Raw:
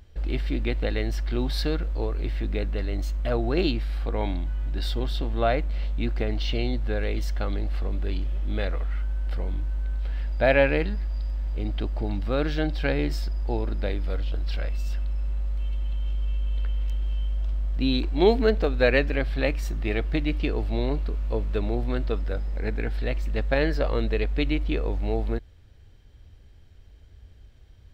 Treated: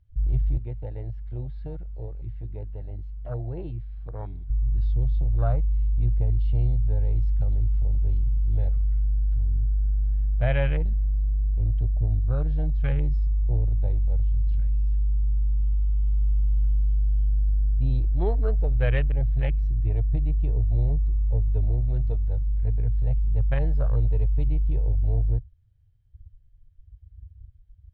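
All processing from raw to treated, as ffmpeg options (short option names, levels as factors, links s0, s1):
-filter_complex "[0:a]asettb=1/sr,asplit=3[s0][s1][s2];[s0]atrim=end=0.574[s3];[s1]atrim=start=0.57:end=4.5,asetpts=PTS-STARTPTS,afade=t=in:d=0.004:c=qsin,afade=t=out:st=3.926:d=0.004:c=qsin,highpass=f=220:p=1,acrossover=split=3200[s4][s5];[s5]acompressor=threshold=0.00282:ratio=4:attack=1:release=60[s6];[s4][s6]amix=inputs=2:normalize=0,highshelf=f=4400:g=-4.5[s7];[s2]atrim=start=4.496[s8];[s3][s7]acrossfade=d=0.004:c1=hsin:c2=qsin[s9];[s9][s8]acrossfade=d=0.004:c1=qsin:c2=hsin,asettb=1/sr,asplit=3[s10][s11][s12];[s10]atrim=end=21.734[s13];[s11]atrim=start=21.73:end=22.46,asetpts=PTS-STARTPTS,afade=t=in:d=0.004:c=qsin,afade=t=out:st=0.726:d=0.004:c=qsin,highshelf=f=4900:g=10,asplit=2[s14][s15];[s15]adelay=13,volume=0.282[s16];[s14][s16]amix=inputs=2:normalize=0,atrim=end_sample=32193[s17];[s12]atrim=start=22.456[s18];[s13][s17]acrossfade=d=0.004:c1=hsin:c2=qsin[s19];[s19][s18]acrossfade=d=0.004:c1=qsin:c2=hsin,afwtdn=0.0398,lowpass=4600,lowshelf=f=170:t=q:w=3:g=12,volume=0.376"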